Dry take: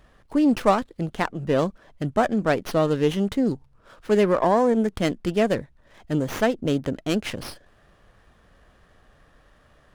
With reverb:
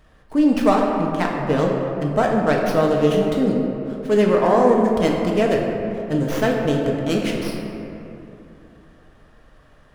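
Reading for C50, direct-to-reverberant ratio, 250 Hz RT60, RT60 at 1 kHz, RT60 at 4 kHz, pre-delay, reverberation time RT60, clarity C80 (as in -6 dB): 1.5 dB, -1.0 dB, 3.3 s, 2.6 s, 1.5 s, 4 ms, 2.8 s, 2.5 dB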